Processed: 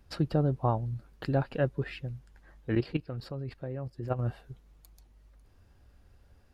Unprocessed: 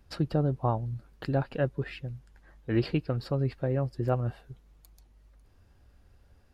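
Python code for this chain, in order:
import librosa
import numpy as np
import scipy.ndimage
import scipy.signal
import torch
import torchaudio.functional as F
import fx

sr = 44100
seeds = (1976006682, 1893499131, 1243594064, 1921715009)

y = fx.level_steps(x, sr, step_db=12, at=(2.75, 4.19))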